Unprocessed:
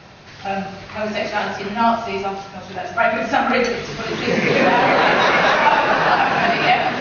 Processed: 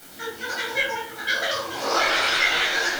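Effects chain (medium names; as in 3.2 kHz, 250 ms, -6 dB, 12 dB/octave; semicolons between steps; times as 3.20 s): low-pass 2.3 kHz 12 dB/octave; added noise blue -32 dBFS; simulated room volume 2000 m³, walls furnished, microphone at 2.8 m; speed mistake 33 rpm record played at 78 rpm; detune thickener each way 54 cents; trim -5 dB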